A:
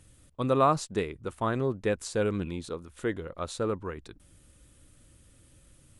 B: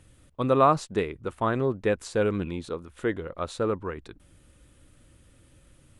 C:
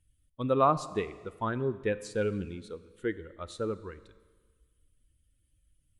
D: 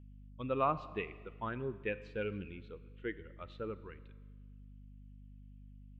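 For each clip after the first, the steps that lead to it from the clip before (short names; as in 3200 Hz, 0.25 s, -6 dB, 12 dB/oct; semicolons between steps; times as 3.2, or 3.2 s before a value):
tone controls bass -2 dB, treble -7 dB; gain +3.5 dB
per-bin expansion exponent 1.5; Schroeder reverb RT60 1.5 s, combs from 29 ms, DRR 15 dB; gain -3 dB
ladder low-pass 3000 Hz, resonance 60%; hum 50 Hz, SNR 12 dB; gain +2 dB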